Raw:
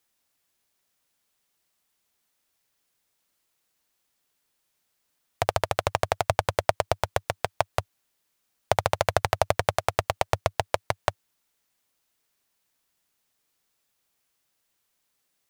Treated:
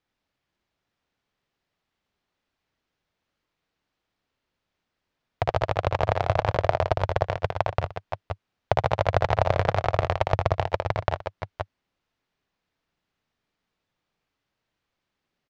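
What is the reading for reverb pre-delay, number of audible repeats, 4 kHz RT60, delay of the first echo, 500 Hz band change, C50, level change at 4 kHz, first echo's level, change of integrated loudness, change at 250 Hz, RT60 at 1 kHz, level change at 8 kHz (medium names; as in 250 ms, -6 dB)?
no reverb, 3, no reverb, 57 ms, +2.0 dB, no reverb, -4.0 dB, -4.5 dB, +1.5 dB, +5.0 dB, no reverb, under -10 dB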